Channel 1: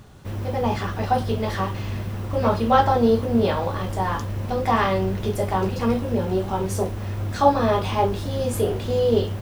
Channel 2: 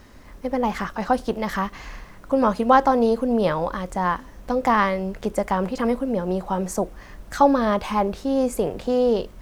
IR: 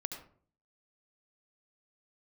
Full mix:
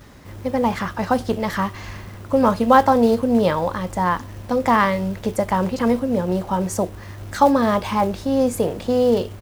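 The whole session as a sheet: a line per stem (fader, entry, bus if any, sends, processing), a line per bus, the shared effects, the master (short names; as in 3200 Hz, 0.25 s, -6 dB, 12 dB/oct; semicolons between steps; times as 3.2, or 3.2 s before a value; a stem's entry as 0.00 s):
-1.0 dB, 0.00 s, no send, short-mantissa float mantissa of 2-bit; auto duck -7 dB, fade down 0.20 s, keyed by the second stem
+2.5 dB, 8 ms, no send, HPF 59 Hz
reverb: off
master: dry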